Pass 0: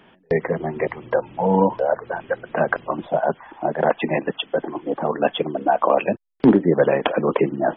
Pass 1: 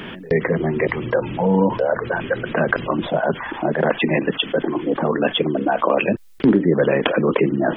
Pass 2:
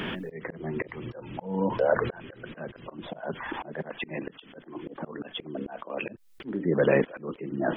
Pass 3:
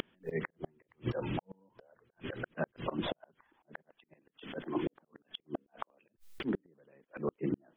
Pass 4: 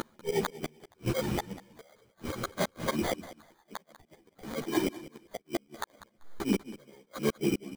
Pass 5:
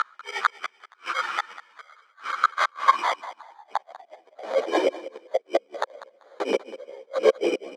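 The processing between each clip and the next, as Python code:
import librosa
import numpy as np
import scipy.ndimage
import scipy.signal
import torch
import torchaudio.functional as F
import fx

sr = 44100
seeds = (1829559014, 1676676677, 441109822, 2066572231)

y1 = fx.peak_eq(x, sr, hz=780.0, db=-9.0, octaves=0.99)
y1 = fx.env_flatten(y1, sr, amount_pct=50)
y1 = y1 * 10.0 ** (-1.0 / 20.0)
y2 = fx.auto_swell(y1, sr, attack_ms=729.0)
y3 = fx.rider(y2, sr, range_db=3, speed_s=0.5)
y3 = fx.gate_flip(y3, sr, shuts_db=-24.0, range_db=-41)
y3 = y3 * 10.0 ** (2.5 / 20.0)
y4 = fx.sample_hold(y3, sr, seeds[0], rate_hz=2700.0, jitter_pct=0)
y4 = fx.echo_feedback(y4, sr, ms=194, feedback_pct=19, wet_db=-16.0)
y4 = fx.ensemble(y4, sr)
y4 = y4 * 10.0 ** (8.5 / 20.0)
y5 = fx.filter_sweep_highpass(y4, sr, from_hz=1300.0, to_hz=530.0, start_s=2.49, end_s=4.79, q=5.6)
y5 = fx.bandpass_edges(y5, sr, low_hz=250.0, high_hz=4500.0)
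y5 = y5 * 10.0 ** (6.5 / 20.0)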